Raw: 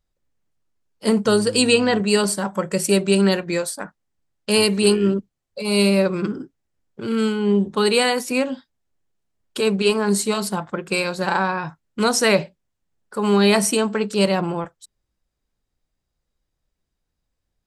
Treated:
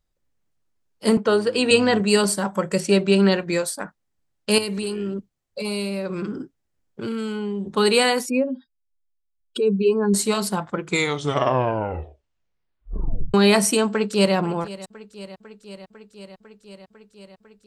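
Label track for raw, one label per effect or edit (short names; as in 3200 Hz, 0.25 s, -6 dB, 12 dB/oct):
1.170000	1.710000	three-band isolator lows -16 dB, under 230 Hz, highs -15 dB, over 3700 Hz
2.800000	3.400000	LPF 5100 Hz
4.580000	7.670000	compressor 12:1, threshold -23 dBFS
8.260000	10.140000	spectral contrast raised exponent 1.9
10.690000	10.690000	tape stop 2.65 s
13.900000	14.350000	echo throw 0.5 s, feedback 80%, level -17.5 dB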